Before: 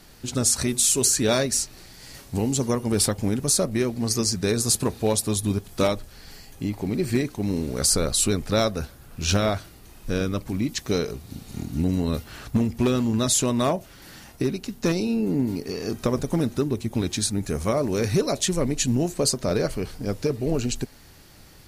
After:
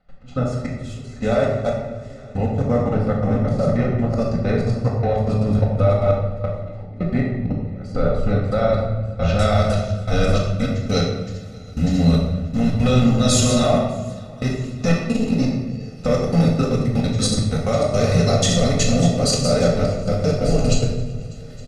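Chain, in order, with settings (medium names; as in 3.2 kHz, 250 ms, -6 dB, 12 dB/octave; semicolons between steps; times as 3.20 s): backward echo that repeats 298 ms, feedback 67%, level -6 dB; low-pass 1.7 kHz 12 dB/octave, from 9.39 s 7.1 kHz; comb 1.5 ms, depth 83%; level held to a coarse grid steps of 23 dB; simulated room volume 590 m³, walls mixed, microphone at 2 m; trim +2 dB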